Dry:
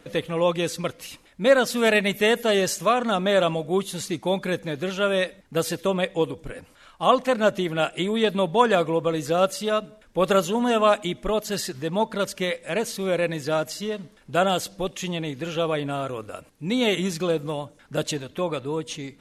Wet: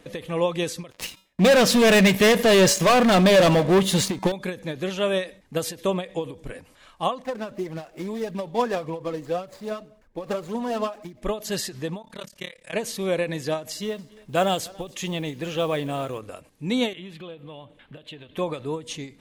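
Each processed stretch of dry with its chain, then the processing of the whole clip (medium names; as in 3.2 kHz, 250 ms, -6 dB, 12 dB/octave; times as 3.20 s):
0.91–4.32 s: treble shelf 7.9 kHz -10 dB + waveshaping leveller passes 5 + feedback comb 190 Hz, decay 0.32 s, harmonics odd, mix 50%
7.22–11.22 s: median filter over 15 samples + flange 1.8 Hz, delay 0.4 ms, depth 4.1 ms, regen +46%
12.02–12.74 s: peaking EQ 350 Hz -9 dB 2.4 oct + hum notches 50/100/150/200/250/300 Hz + AM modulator 35 Hz, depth 95%
13.70–16.20 s: delay 285 ms -23 dB + modulation noise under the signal 29 dB
16.93–18.36 s: resonant high shelf 4.3 kHz -10.5 dB, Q 3 + compression 3:1, threshold -41 dBFS
whole clip: band-stop 1.4 kHz, Q 9.8; endings held to a fixed fall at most 180 dB/s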